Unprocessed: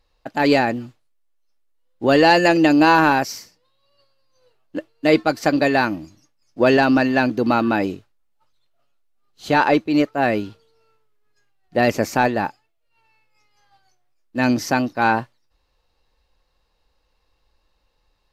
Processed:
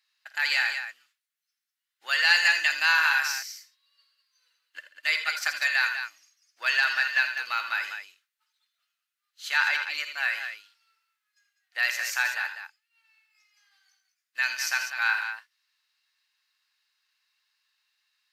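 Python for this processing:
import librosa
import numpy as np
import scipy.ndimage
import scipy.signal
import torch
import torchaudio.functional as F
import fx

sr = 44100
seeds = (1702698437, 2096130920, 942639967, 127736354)

y = scipy.signal.sosfilt(scipy.signal.cheby1(3, 1.0, 1600.0, 'highpass', fs=sr, output='sos'), x)
y = fx.echo_multitap(y, sr, ms=(52, 81, 83, 138, 198), db=(-14.5, -12.5, -12.0, -19.5, -8.5))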